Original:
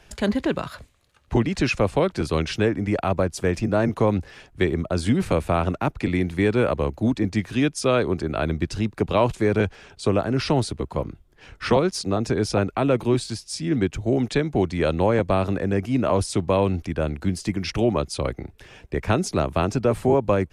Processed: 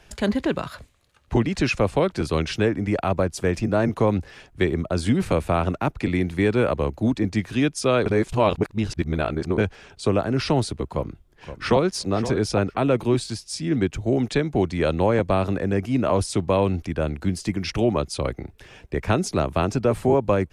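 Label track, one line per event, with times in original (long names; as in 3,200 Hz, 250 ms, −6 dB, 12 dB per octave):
8.060000	9.580000	reverse
10.880000	11.860000	delay throw 520 ms, feedback 15%, level −12 dB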